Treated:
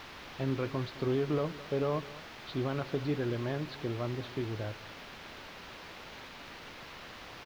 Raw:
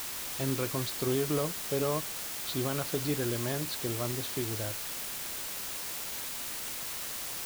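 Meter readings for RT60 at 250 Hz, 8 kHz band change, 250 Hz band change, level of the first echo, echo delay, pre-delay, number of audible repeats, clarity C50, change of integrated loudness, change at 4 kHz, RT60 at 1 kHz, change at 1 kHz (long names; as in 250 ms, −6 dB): no reverb audible, −23.0 dB, −0.5 dB, −18.0 dB, 213 ms, no reverb audible, 1, no reverb audible, −4.0 dB, −8.0 dB, no reverb audible, −1.5 dB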